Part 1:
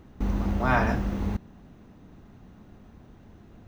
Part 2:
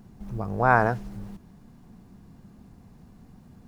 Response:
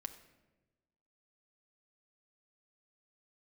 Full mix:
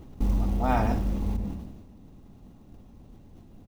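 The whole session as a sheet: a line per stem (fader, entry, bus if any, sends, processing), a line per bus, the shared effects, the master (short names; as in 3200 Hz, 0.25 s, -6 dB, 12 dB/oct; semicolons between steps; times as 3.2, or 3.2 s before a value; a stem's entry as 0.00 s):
-0.5 dB, 0.00 s, send -4 dB, low shelf 70 Hz +6 dB; short-mantissa float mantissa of 4-bit; auto duck -11 dB, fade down 0.40 s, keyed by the second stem
-9.0 dB, 1.3 ms, no send, dry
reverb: on, RT60 1.1 s, pre-delay 4 ms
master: bell 1600 Hz -9 dB 0.9 oct; sustainer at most 45 dB/s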